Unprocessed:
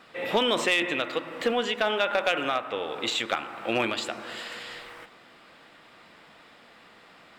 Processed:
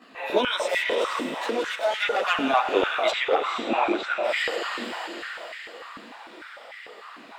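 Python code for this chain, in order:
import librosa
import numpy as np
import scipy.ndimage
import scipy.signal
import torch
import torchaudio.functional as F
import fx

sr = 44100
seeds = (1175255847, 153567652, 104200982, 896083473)

y = fx.spec_ripple(x, sr, per_octave=1.5, drift_hz=-0.86, depth_db=8)
y = fx.rider(y, sr, range_db=3, speed_s=0.5)
y = fx.tube_stage(y, sr, drive_db=28.0, bias=0.6, at=(0.66, 2.01))
y = fx.chorus_voices(y, sr, voices=2, hz=0.89, base_ms=17, depth_ms=3.7, mix_pct=65)
y = fx.spacing_loss(y, sr, db_at_10k=22, at=(3.1, 4.23), fade=0.02)
y = fx.echo_diffused(y, sr, ms=469, feedback_pct=45, wet_db=-5)
y = fx.filter_held_highpass(y, sr, hz=6.7, low_hz=250.0, high_hz=2000.0)
y = y * librosa.db_to_amplitude(2.5)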